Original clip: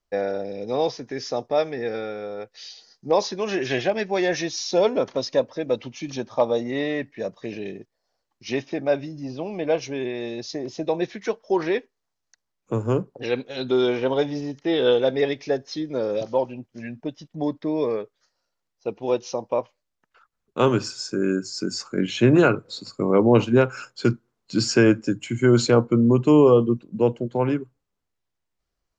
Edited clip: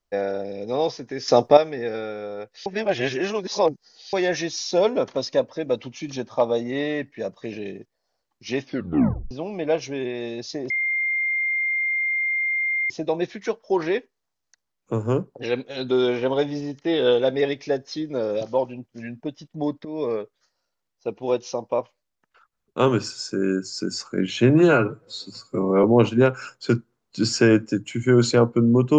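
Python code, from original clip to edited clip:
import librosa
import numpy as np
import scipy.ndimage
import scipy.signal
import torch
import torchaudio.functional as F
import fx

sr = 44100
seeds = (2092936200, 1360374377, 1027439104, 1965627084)

y = fx.edit(x, sr, fx.clip_gain(start_s=1.28, length_s=0.29, db=10.5),
    fx.reverse_span(start_s=2.66, length_s=1.47),
    fx.tape_stop(start_s=8.64, length_s=0.67),
    fx.insert_tone(at_s=10.7, length_s=2.2, hz=2110.0, db=-20.5),
    fx.fade_in_from(start_s=17.65, length_s=0.27, floor_db=-13.0),
    fx.stretch_span(start_s=22.3, length_s=0.89, factor=1.5), tone=tone)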